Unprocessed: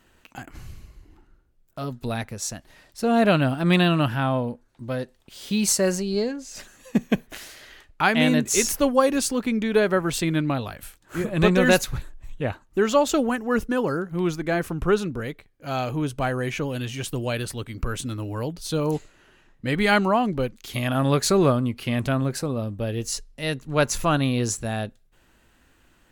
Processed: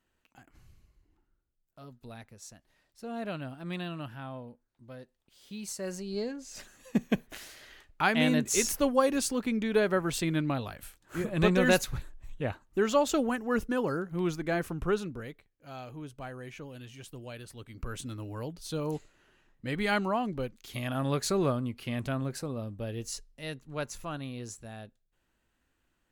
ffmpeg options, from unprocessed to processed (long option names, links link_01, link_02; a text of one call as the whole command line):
ffmpeg -i in.wav -af "volume=1.5dB,afade=type=in:start_time=5.74:duration=0.8:silence=0.251189,afade=type=out:start_time=14.57:duration=1.16:silence=0.298538,afade=type=in:start_time=17.47:duration=0.52:silence=0.421697,afade=type=out:start_time=23.06:duration=0.92:silence=0.421697" out.wav